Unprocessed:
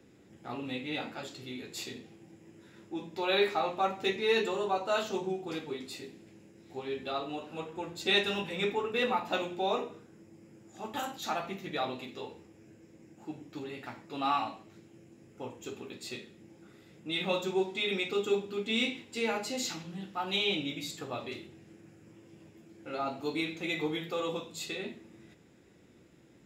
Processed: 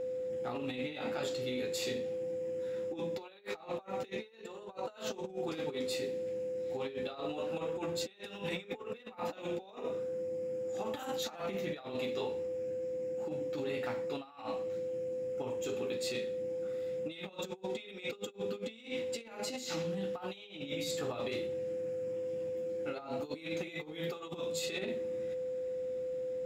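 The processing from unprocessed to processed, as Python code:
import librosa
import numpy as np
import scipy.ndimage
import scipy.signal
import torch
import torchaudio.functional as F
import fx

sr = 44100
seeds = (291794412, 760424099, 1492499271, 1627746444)

y = x + 10.0 ** (-38.0 / 20.0) * np.sin(2.0 * np.pi * 510.0 * np.arange(len(x)) / sr)
y = fx.over_compress(y, sr, threshold_db=-38.0, ratio=-0.5)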